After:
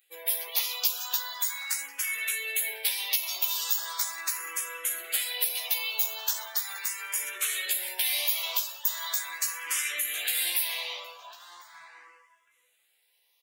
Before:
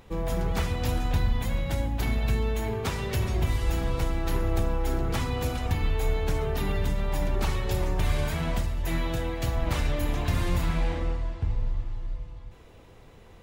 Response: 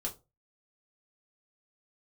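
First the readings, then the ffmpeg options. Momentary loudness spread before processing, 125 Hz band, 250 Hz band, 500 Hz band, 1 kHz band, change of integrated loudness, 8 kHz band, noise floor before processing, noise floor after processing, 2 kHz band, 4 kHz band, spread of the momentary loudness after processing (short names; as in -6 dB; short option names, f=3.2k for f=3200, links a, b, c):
4 LU, under -40 dB, under -30 dB, -16.0 dB, -7.0 dB, +1.0 dB, +13.5 dB, -51 dBFS, -70 dBFS, +3.5 dB, +8.5 dB, 6 LU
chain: -filter_complex "[0:a]highpass=1.1k,aemphasis=mode=production:type=75kf,afftdn=nr=20:nf=-44,tiltshelf=f=1.5k:g=-5.5,acompressor=threshold=-26dB:ratio=6,asplit=2[a][b];[b]adelay=14,volume=-2.5dB[c];[a][c]amix=inputs=2:normalize=0,asplit=2[d][e];[e]adelay=1050,volume=-8dB,highshelf=f=4k:g=-23.6[f];[d][f]amix=inputs=2:normalize=0,asplit=2[g][h];[h]afreqshift=0.39[i];[g][i]amix=inputs=2:normalize=1,volume=3dB"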